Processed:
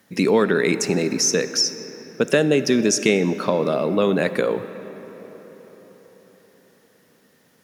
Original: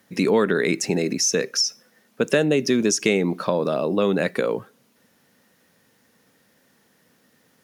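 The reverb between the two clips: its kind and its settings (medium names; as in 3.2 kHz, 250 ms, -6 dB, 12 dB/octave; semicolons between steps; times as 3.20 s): algorithmic reverb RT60 5 s, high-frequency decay 0.55×, pre-delay 15 ms, DRR 12 dB; trim +1.5 dB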